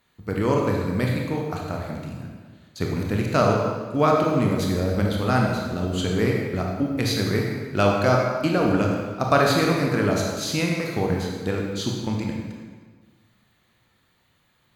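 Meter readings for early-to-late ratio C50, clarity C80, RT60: 1.0 dB, 3.0 dB, 1.5 s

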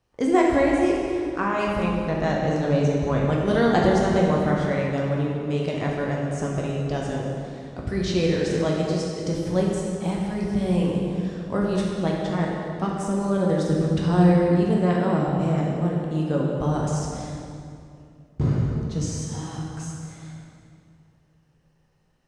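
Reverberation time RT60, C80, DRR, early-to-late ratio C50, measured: 2.5 s, 1.5 dB, −3.0 dB, 0.0 dB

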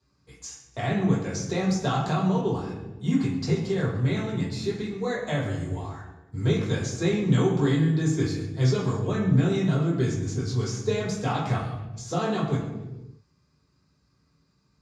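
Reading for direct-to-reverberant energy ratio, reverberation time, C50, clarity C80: −6.5 dB, 1.1 s, 4.0 dB, 6.5 dB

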